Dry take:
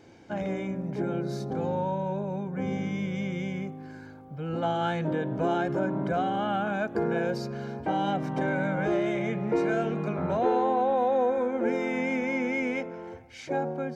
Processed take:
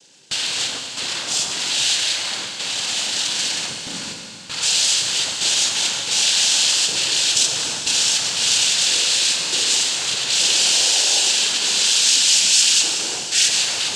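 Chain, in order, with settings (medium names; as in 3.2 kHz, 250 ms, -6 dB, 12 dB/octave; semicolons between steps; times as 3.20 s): power-law waveshaper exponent 0.7; in parallel at -4 dB: sine folder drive 18 dB, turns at -14.5 dBFS; on the sum: resonant high shelf 2.7 kHz +14 dB, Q 1.5; noise-vocoded speech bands 8; gate with hold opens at -9 dBFS; tilt shelf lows -5.5 dB; Schroeder reverb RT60 2.9 s, combs from 32 ms, DRR 3 dB; trim -12.5 dB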